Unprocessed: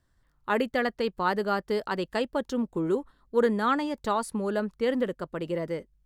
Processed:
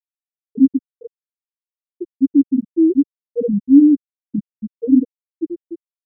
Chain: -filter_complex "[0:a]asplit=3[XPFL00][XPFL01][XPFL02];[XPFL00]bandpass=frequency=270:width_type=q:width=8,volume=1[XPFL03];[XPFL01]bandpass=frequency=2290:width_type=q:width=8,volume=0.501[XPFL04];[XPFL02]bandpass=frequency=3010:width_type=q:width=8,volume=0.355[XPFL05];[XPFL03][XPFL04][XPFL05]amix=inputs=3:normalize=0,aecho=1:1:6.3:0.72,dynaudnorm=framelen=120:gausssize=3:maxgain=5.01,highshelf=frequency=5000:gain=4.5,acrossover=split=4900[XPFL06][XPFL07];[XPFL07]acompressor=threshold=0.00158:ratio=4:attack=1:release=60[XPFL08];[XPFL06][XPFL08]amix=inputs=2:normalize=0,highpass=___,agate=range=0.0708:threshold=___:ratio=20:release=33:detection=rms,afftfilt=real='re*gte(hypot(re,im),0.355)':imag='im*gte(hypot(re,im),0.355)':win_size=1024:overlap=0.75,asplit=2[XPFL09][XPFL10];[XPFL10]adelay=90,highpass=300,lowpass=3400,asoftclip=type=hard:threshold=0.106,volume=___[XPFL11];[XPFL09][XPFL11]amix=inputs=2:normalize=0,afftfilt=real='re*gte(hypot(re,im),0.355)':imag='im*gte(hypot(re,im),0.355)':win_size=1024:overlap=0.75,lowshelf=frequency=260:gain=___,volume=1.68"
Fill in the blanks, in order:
62, 0.00708, 0.112, 11